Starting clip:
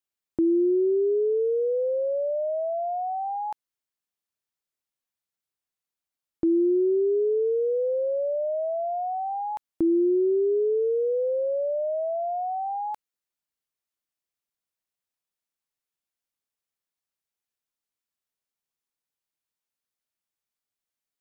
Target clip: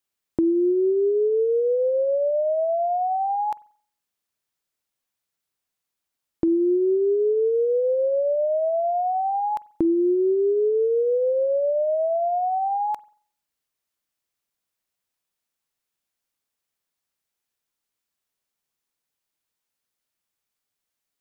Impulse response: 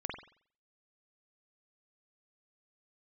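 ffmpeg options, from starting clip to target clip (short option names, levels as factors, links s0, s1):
-filter_complex "[0:a]acompressor=threshold=0.0501:ratio=3,asplit=2[s0][s1];[1:a]atrim=start_sample=2205[s2];[s1][s2]afir=irnorm=-1:irlink=0,volume=0.106[s3];[s0][s3]amix=inputs=2:normalize=0,volume=1.88"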